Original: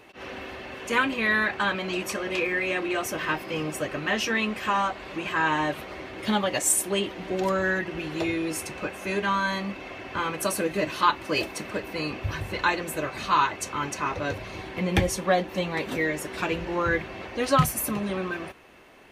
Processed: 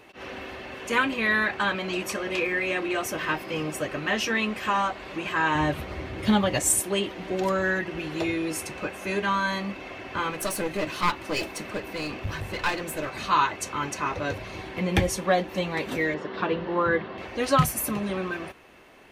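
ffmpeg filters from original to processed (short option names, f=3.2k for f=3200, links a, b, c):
-filter_complex "[0:a]asettb=1/sr,asplit=3[a][b][c];[a]atrim=end=5.554[d];[b]atrim=start=5.55:end=6.8,asetpts=PTS-STARTPTS,afade=t=in:d=0.004:c=qsin,afade=t=out:st=1.246:d=0.004:c=qsin,equalizer=f=77:t=o:w=2.2:g=14.5[e];[c]atrim=start=6.796[f];[d][e]acrossfade=d=0.004:c1=hsin:c2=qsin[g];[g][f]acrossfade=d=0.004:c1=qsin:c2=hsin,asettb=1/sr,asplit=3[h][i][j];[h]atrim=end=10.304[k];[i]atrim=start=10.3:end=13.12,asetpts=PTS-STARTPTS,afade=t=in:d=0.004:c=qsin,afade=t=out:st=2.816:d=0.004:c=qsin,aeval=exprs='clip(val(0),-1,0.0316)':c=same[l];[j]atrim=start=13.116[m];[k][l]acrossfade=d=0.004:c1=hsin:c2=qsin[n];[n][m]acrossfade=d=0.004:c1=qsin:c2=hsin,asettb=1/sr,asplit=3[o][p][q];[o]atrim=end=16.144[r];[p]atrim=start=16.14:end=17.18,asetpts=PTS-STARTPTS,afade=t=in:d=0.004:c=qsin,afade=t=out:st=1.036:d=0.004:c=qsin,highpass=120,equalizer=f=210:t=q:w=4:g=5,equalizer=f=450:t=q:w=4:g=5,equalizer=f=1.1k:t=q:w=4:g=5,equalizer=f=2.4k:t=q:w=4:g=-9,lowpass=f=4k:w=0.5412,lowpass=f=4k:w=1.3066[s];[q]atrim=start=17.176[t];[r][s]acrossfade=d=0.004:c1=hsin:c2=qsin[u];[u][t]acrossfade=d=0.004:c1=qsin:c2=hsin"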